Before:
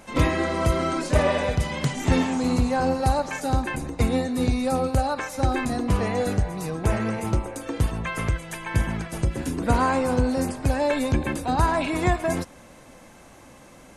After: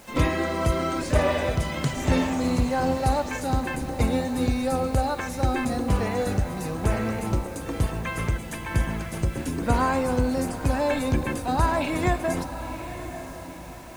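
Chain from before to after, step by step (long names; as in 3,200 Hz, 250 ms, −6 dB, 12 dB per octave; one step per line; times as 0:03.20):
feedback delay with all-pass diffusion 961 ms, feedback 41%, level −11 dB
bit-depth reduction 8 bits, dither none
level −1.5 dB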